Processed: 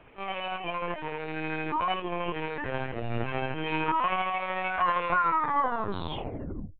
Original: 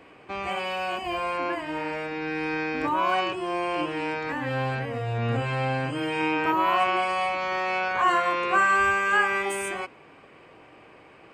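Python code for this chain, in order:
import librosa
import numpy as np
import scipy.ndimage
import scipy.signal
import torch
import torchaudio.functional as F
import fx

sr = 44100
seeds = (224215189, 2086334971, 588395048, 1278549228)

y = fx.tape_stop_end(x, sr, length_s=2.95)
y = fx.stretch_grains(y, sr, factor=0.6, grain_ms=153.0)
y = fx.lpc_vocoder(y, sr, seeds[0], excitation='pitch_kept', order=16)
y = y * librosa.db_to_amplitude(-2.5)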